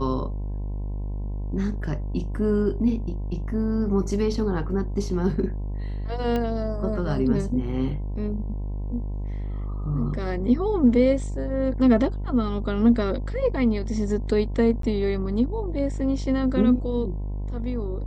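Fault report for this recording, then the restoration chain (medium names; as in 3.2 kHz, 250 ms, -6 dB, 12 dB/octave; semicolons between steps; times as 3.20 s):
buzz 50 Hz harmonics 21 -29 dBFS
6.36 s: pop -16 dBFS
14.82–14.83 s: dropout 13 ms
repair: de-click; de-hum 50 Hz, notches 21; interpolate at 14.82 s, 13 ms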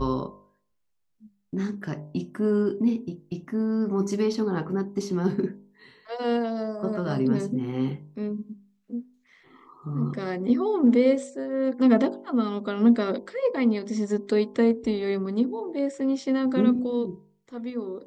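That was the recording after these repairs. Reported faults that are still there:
nothing left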